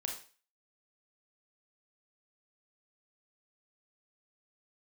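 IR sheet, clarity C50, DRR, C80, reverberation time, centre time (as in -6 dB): 6.5 dB, 0.5 dB, 11.5 dB, 0.40 s, 26 ms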